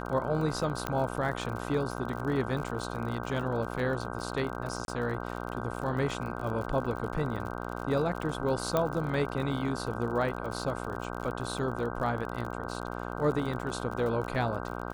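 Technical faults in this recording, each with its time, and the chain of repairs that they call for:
mains buzz 60 Hz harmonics 26 −37 dBFS
surface crackle 53 per second −36 dBFS
0:00.87: click −16 dBFS
0:04.85–0:04.88: drop-out 31 ms
0:08.77: click −14 dBFS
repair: click removal
hum removal 60 Hz, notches 26
repair the gap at 0:04.85, 31 ms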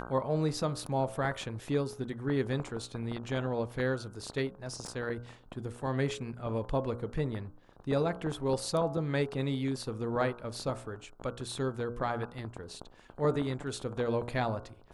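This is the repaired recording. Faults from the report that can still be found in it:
0:00.87: click
0:08.77: click

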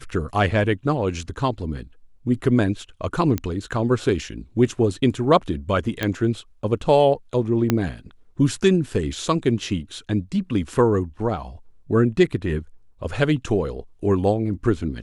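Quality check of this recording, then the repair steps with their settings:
0:03.38: click −11 dBFS
0:06.03: click −9 dBFS
0:07.70: click −5 dBFS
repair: click removal

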